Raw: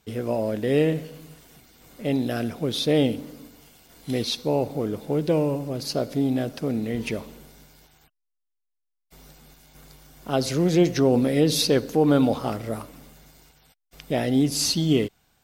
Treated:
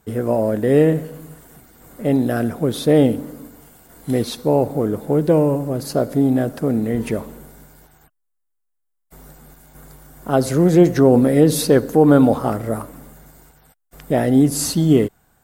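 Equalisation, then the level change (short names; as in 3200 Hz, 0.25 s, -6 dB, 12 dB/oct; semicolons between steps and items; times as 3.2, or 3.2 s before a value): band shelf 3700 Hz -10.5 dB; +7.0 dB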